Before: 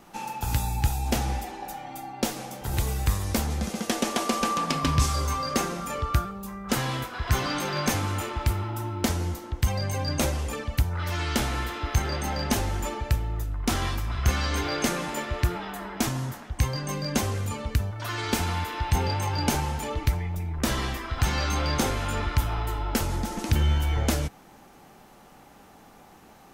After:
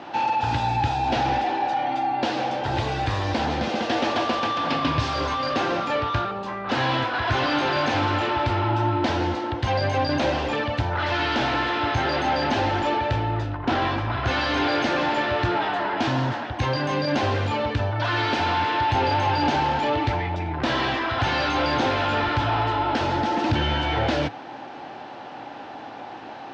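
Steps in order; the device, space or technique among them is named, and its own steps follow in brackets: 13.57–14.27 s: treble shelf 2.3 kHz -9.5 dB; overdrive pedal into a guitar cabinet (overdrive pedal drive 27 dB, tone 1.7 kHz, clips at -10.5 dBFS; cabinet simulation 87–4600 Hz, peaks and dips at 110 Hz +7 dB, 190 Hz -10 dB, 290 Hz +4 dB, 430 Hz -5 dB, 1.2 kHz -8 dB, 2.1 kHz -5 dB)

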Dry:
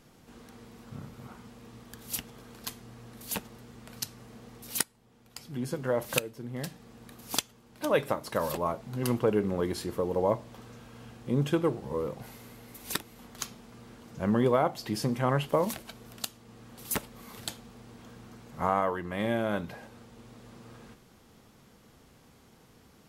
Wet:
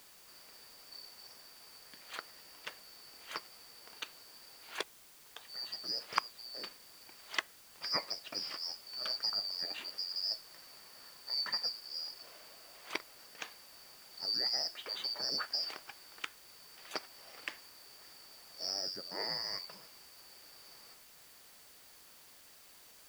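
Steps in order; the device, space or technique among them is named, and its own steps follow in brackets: split-band scrambled radio (four frequency bands reordered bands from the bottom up 2341; band-pass 360–2800 Hz; white noise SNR 16 dB)

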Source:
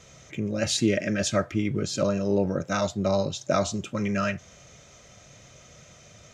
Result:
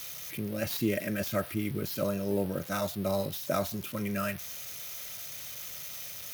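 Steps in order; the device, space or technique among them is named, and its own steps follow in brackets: budget class-D amplifier (dead-time distortion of 0.062 ms; zero-crossing glitches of -22 dBFS); trim -6 dB

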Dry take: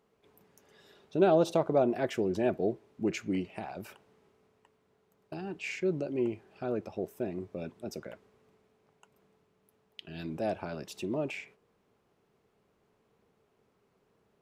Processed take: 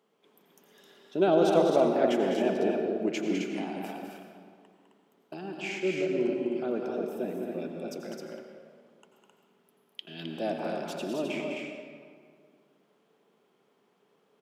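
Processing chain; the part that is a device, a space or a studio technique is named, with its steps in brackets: stadium PA (high-pass 180 Hz 24 dB/octave; peaking EQ 3.2 kHz +7.5 dB 0.21 oct; loudspeakers at several distances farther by 70 m -7 dB, 90 m -5 dB; reverberation RT60 2.0 s, pre-delay 81 ms, DRR 4 dB)

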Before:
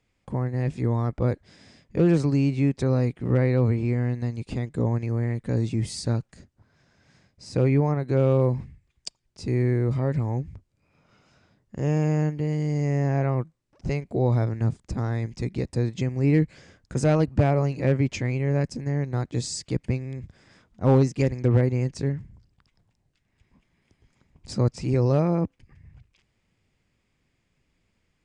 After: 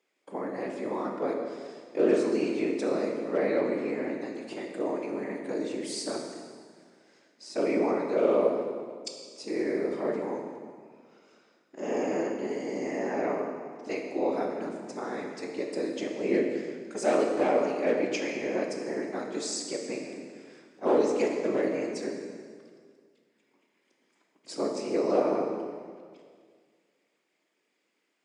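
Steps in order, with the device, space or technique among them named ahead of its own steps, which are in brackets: whispering ghost (whisper effect; high-pass 310 Hz 24 dB/octave; reverberation RT60 1.9 s, pre-delay 10 ms, DRR 1.5 dB); trim -2.5 dB

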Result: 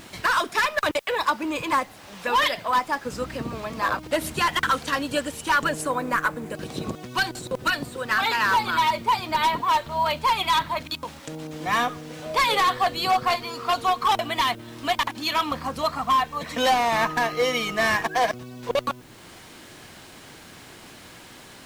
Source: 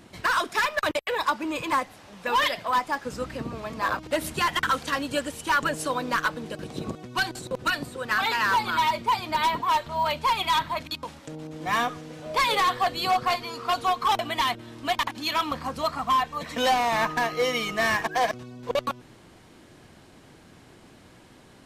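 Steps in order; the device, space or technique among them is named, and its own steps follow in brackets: 5.81–6.55 s: high-order bell 4.1 kHz -9 dB 1.3 oct; noise-reduction cassette on a plain deck (tape noise reduction on one side only encoder only; wow and flutter 18 cents; white noise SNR 34 dB); trim +2 dB

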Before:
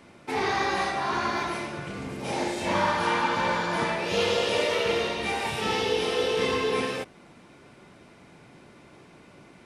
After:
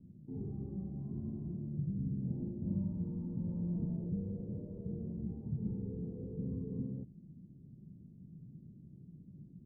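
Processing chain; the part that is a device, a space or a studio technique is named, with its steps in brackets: 3.51–4.10 s: peaking EQ 750 Hz +6 dB 2.4 oct; overdriven synthesiser ladder filter (saturation -22 dBFS, distortion -14 dB; four-pole ladder low-pass 210 Hz, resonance 40%); trim +8 dB

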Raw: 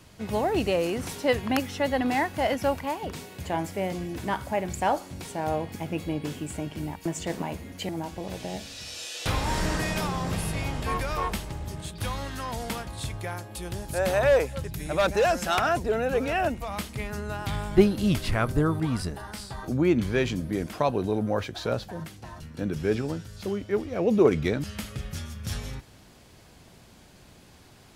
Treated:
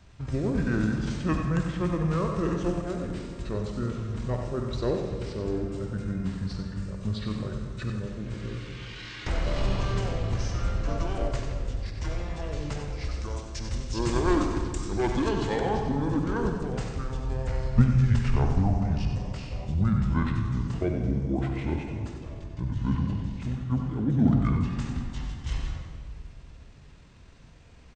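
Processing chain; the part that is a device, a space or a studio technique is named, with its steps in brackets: monster voice (pitch shift -8 st; formant shift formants -2 st; bass shelf 140 Hz +8 dB; delay 94 ms -9.5 dB; reverberation RT60 2.1 s, pre-delay 46 ms, DRR 4.5 dB); 13.11–15.29 s: treble shelf 5.5 kHz +10 dB; trim -5 dB

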